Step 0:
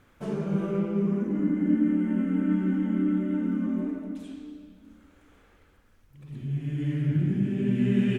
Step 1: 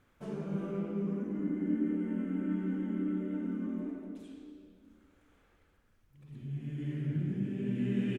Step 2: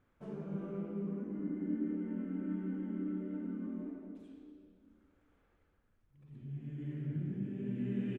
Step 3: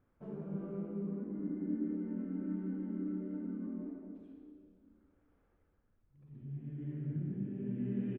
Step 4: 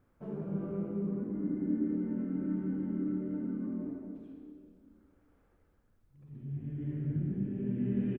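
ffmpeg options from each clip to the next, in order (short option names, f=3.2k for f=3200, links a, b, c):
-filter_complex "[0:a]asplit=4[a][b][c][d];[b]adelay=107,afreqshift=86,volume=-14.5dB[e];[c]adelay=214,afreqshift=172,volume=-24.1dB[f];[d]adelay=321,afreqshift=258,volume=-33.8dB[g];[a][e][f][g]amix=inputs=4:normalize=0,volume=-8.5dB"
-af "highshelf=f=2.8k:g=-10.5,volume=-4.5dB"
-af "lowpass=f=1.1k:p=1"
-filter_complex "[0:a]asplit=5[a][b][c][d][e];[b]adelay=80,afreqshift=-41,volume=-17dB[f];[c]adelay=160,afreqshift=-82,volume=-23.6dB[g];[d]adelay=240,afreqshift=-123,volume=-30.1dB[h];[e]adelay=320,afreqshift=-164,volume=-36.7dB[i];[a][f][g][h][i]amix=inputs=5:normalize=0,volume=4.5dB"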